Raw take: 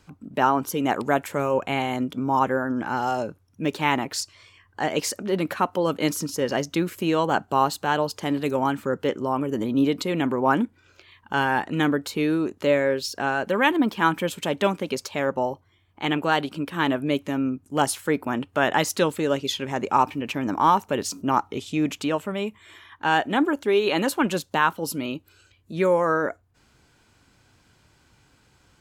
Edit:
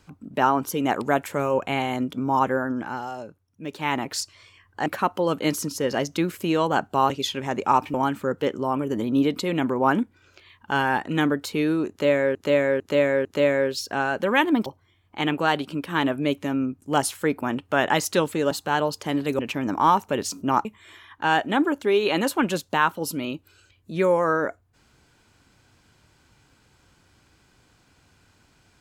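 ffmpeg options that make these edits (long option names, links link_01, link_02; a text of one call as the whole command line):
ffmpeg -i in.wav -filter_complex "[0:a]asplit=13[link_01][link_02][link_03][link_04][link_05][link_06][link_07][link_08][link_09][link_10][link_11][link_12][link_13];[link_01]atrim=end=3.09,asetpts=PTS-STARTPTS,afade=type=out:start_time=2.64:duration=0.45:silence=0.354813[link_14];[link_02]atrim=start=3.09:end=3.66,asetpts=PTS-STARTPTS,volume=-9dB[link_15];[link_03]atrim=start=3.66:end=4.862,asetpts=PTS-STARTPTS,afade=type=in:duration=0.45:silence=0.354813[link_16];[link_04]atrim=start=5.438:end=7.682[link_17];[link_05]atrim=start=19.348:end=20.192[link_18];[link_06]atrim=start=8.558:end=12.972[link_19];[link_07]atrim=start=12.518:end=12.972[link_20];[link_08]atrim=start=12.518:end=12.972[link_21];[link_09]atrim=start=12.518:end=13.932[link_22];[link_10]atrim=start=15.498:end=19.352[link_23];[link_11]atrim=start=7.678:end=8.562[link_24];[link_12]atrim=start=20.188:end=21.452[link_25];[link_13]atrim=start=22.458[link_26];[link_14][link_15][link_16]concat=n=3:v=0:a=1[link_27];[link_27][link_17]acrossfade=duration=0.004:curve1=hsin:curve2=hsin[link_28];[link_28][link_18]acrossfade=duration=0.004:curve1=hsin:curve2=hsin[link_29];[link_29][link_19]acrossfade=duration=0.004:curve1=hsin:curve2=hsin[link_30];[link_30][link_20]acrossfade=duration=0.004:curve1=hsin:curve2=hsin[link_31];[link_31][link_21]acrossfade=duration=0.004:curve1=hsin:curve2=hsin[link_32];[link_32][link_22]acrossfade=duration=0.004:curve1=hsin:curve2=hsin[link_33];[link_33][link_23]acrossfade=duration=0.004:curve1=hsin:curve2=hsin[link_34];[link_34][link_24]acrossfade=duration=0.004:curve1=hsin:curve2=hsin[link_35];[link_35][link_25]acrossfade=duration=0.004:curve1=hsin:curve2=hsin[link_36];[link_36][link_26]acrossfade=duration=0.004:curve1=hsin:curve2=hsin" out.wav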